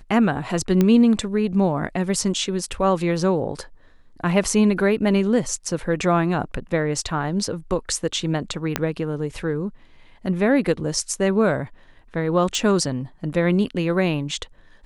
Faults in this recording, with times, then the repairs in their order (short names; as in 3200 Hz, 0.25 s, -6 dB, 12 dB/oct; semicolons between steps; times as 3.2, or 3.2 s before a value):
0.81 pop -7 dBFS
8.76 pop -5 dBFS
12.55 pop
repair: de-click